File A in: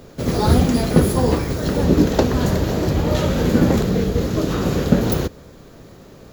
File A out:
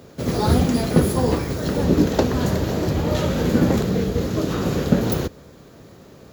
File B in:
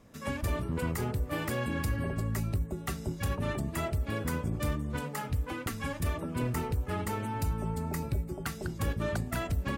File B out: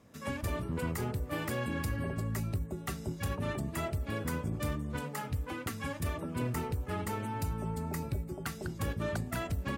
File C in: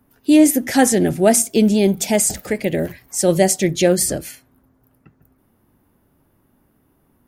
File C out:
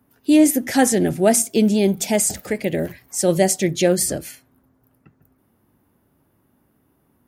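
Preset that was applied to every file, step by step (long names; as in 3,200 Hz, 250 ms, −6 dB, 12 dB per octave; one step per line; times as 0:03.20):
high-pass filter 60 Hz
level −2 dB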